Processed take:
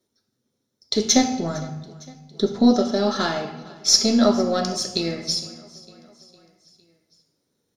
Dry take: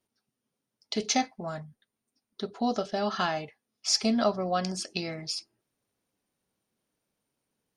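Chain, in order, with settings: half-wave gain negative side -3 dB; 1.16–2.71 low shelf 450 Hz +6.5 dB; feedback echo 0.457 s, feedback 60%, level -22.5 dB; reverb RT60 1.1 s, pre-delay 3 ms, DRR 4.5 dB; gain +5.5 dB

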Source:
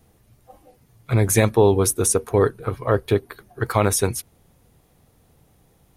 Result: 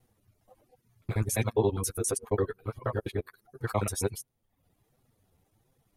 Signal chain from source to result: local time reversal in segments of 68 ms; flange 1.4 Hz, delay 7.5 ms, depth 4 ms, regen +17%; reverb removal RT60 0.67 s; gain -7 dB

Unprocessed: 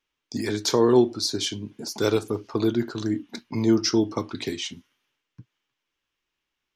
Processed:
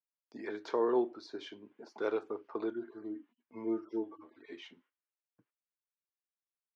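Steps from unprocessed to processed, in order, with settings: 2.7–4.52 median-filter separation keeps harmonic; gate -53 dBFS, range -15 dB; Butterworth band-pass 860 Hz, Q 0.55; gain -8.5 dB

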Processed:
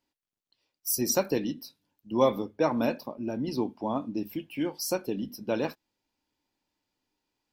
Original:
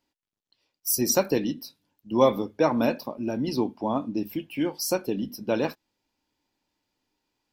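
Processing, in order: 2.12–3.68 mismatched tape noise reduction decoder only; gain -3.5 dB

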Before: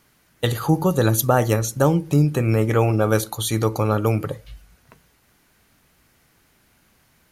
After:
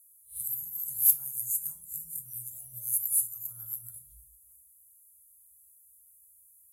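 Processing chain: spectral swells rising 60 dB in 0.31 s; weighting filter ITU-R 468; spectral delete 2.55–3.24, 690–2500 Hz; inverse Chebyshev band-stop 180–4900 Hz, stop band 50 dB; dynamic EQ 3200 Hz, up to -4 dB, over -52 dBFS, Q 0.83; in parallel at -1.5 dB: compressor 8:1, threshold -42 dBFS, peak gain reduction 26.5 dB; on the sum: overloaded stage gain 14 dB; reverb RT60 0.45 s, pre-delay 6 ms, DRR 6 dB; speed mistake 44.1 kHz file played as 48 kHz

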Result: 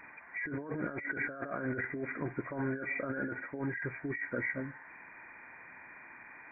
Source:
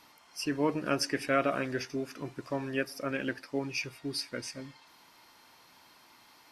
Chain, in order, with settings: nonlinear frequency compression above 1400 Hz 4:1; negative-ratio compressor -37 dBFS, ratio -1

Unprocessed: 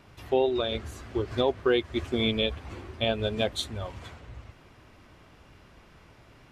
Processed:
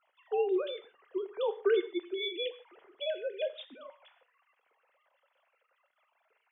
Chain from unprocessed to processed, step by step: sine-wave speech; non-linear reverb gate 0.18 s falling, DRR 10 dB; gain -6 dB

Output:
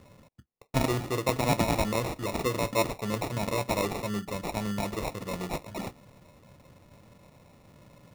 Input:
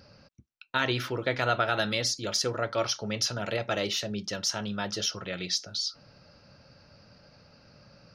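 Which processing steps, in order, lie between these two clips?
high shelf 3700 Hz -9.5 dB; sample-and-hold 28×; gain +2 dB

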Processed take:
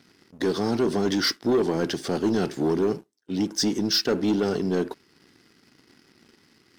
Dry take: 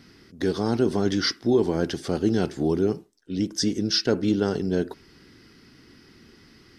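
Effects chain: Bessel high-pass 150 Hz, order 2; sample leveller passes 2; gain -4.5 dB

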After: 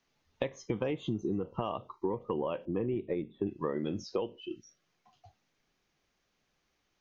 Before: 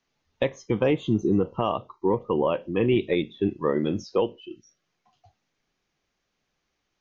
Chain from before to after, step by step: 2.65–3.47 Bessel low-pass 1100 Hz, order 2; compressor 6:1, threshold -30 dBFS, peak gain reduction 12.5 dB

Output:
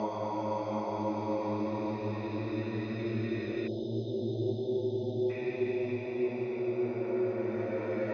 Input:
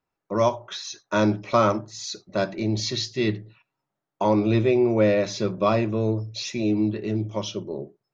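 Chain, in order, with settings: Paulstretch 11×, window 0.50 s, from 4.23; rippled Chebyshev low-pass 6400 Hz, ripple 6 dB; spectral delete 3.67–5.3, 910–2900 Hz; gain -7.5 dB

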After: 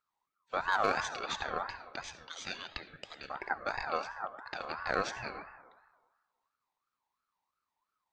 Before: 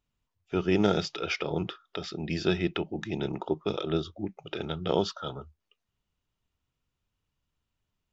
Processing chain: 2.01–3.3 HPF 680 Hz 24 dB/oct; hard clip -13 dBFS, distortion -27 dB; digital reverb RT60 1.3 s, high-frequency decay 0.3×, pre-delay 30 ms, DRR 10.5 dB; ring modulator with a swept carrier 1100 Hz, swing 20%, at 2.9 Hz; gain -3 dB

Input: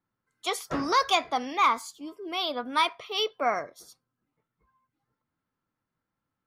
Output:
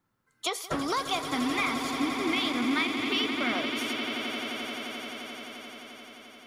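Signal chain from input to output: 1.25–3.53 graphic EQ 125/250/500/1000/2000/8000 Hz +12/+10/-10/-10/+10/-6 dB; compressor 6:1, threshold -35 dBFS, peak gain reduction 16 dB; swelling echo 87 ms, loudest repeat 8, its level -11.5 dB; gain +7 dB

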